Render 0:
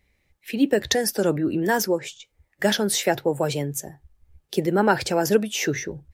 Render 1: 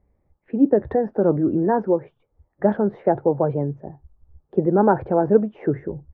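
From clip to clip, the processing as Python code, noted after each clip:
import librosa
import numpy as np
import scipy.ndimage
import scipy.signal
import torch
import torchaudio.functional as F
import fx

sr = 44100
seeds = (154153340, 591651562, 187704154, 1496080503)

y = scipy.signal.sosfilt(scipy.signal.butter(4, 1100.0, 'lowpass', fs=sr, output='sos'), x)
y = y * 10.0 ** (3.5 / 20.0)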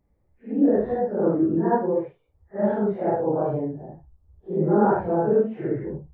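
y = fx.phase_scramble(x, sr, seeds[0], window_ms=200)
y = y * 10.0 ** (-2.5 / 20.0)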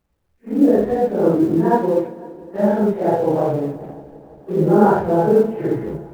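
y = fx.law_mismatch(x, sr, coded='A')
y = fx.echo_heads(y, sr, ms=170, heads='second and third', feedback_pct=58, wet_db=-23.5)
y = fx.rev_plate(y, sr, seeds[1], rt60_s=1.1, hf_ratio=0.95, predelay_ms=0, drr_db=12.5)
y = y * 10.0 ** (6.0 / 20.0)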